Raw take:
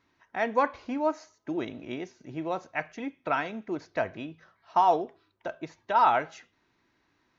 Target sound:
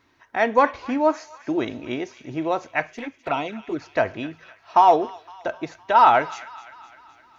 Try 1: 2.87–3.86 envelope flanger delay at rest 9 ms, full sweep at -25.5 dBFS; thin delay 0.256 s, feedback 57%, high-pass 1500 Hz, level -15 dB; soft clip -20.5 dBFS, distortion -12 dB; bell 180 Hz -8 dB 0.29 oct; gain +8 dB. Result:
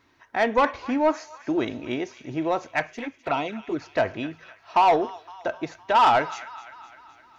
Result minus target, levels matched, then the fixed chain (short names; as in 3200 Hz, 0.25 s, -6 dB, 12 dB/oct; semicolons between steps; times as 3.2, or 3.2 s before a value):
soft clip: distortion +17 dB
2.87–3.86 envelope flanger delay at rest 9 ms, full sweep at -25.5 dBFS; thin delay 0.256 s, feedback 57%, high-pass 1500 Hz, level -15 dB; soft clip -9 dBFS, distortion -28 dB; bell 180 Hz -8 dB 0.29 oct; gain +8 dB